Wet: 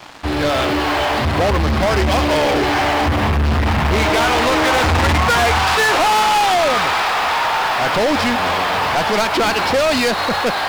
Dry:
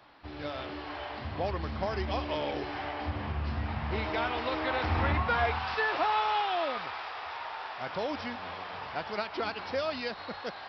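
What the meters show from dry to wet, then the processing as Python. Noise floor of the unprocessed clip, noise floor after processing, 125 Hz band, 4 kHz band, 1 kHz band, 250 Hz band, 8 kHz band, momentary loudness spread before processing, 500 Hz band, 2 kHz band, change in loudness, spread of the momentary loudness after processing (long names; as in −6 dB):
−43 dBFS, −20 dBFS, +16.0 dB, +19.5 dB, +16.5 dB, +18.0 dB, can't be measured, 11 LU, +16.5 dB, +17.5 dB, +17.0 dB, 4 LU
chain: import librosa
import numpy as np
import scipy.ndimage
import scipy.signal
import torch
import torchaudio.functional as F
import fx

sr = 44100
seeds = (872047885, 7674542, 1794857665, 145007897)

y = fx.leveller(x, sr, passes=5)
y = fx.hum_notches(y, sr, base_hz=50, count=2)
y = y * librosa.db_to_amplitude(6.5)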